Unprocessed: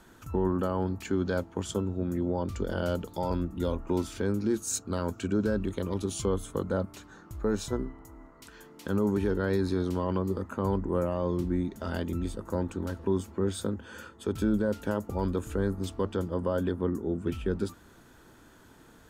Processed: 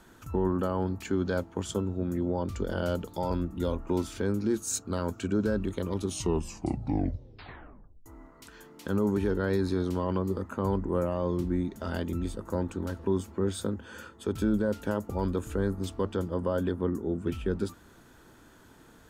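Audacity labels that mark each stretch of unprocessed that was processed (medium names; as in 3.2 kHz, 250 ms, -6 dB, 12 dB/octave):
6.040000	6.040000	tape stop 2.02 s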